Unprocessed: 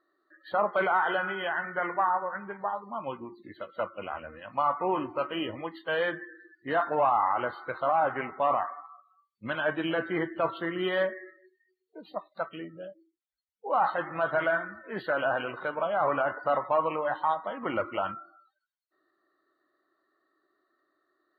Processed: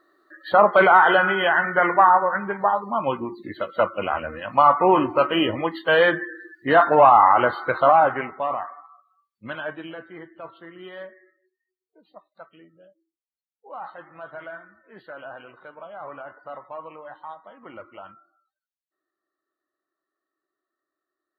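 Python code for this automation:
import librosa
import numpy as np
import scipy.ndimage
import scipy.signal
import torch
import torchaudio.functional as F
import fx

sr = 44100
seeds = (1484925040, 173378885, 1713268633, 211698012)

y = fx.gain(x, sr, db=fx.line((7.87, 11.5), (8.49, -0.5), (9.54, -0.5), (10.08, -11.0)))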